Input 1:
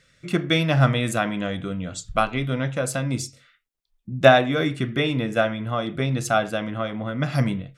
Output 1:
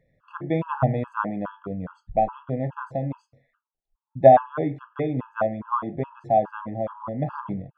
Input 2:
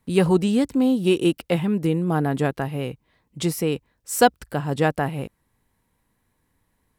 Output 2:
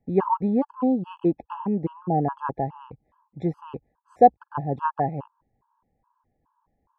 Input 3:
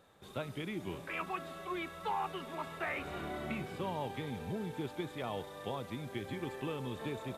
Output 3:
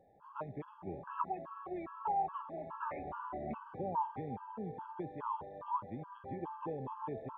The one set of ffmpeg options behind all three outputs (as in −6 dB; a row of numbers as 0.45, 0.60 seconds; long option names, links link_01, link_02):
-af "lowpass=frequency=990:width_type=q:width=4.9,afftfilt=real='re*gt(sin(2*PI*2.4*pts/sr)*(1-2*mod(floor(b*sr/1024/850),2)),0)':imag='im*gt(sin(2*PI*2.4*pts/sr)*(1-2*mod(floor(b*sr/1024/850),2)),0)':win_size=1024:overlap=0.75,volume=-2.5dB"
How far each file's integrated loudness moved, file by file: −1.5, −2.5, −1.5 LU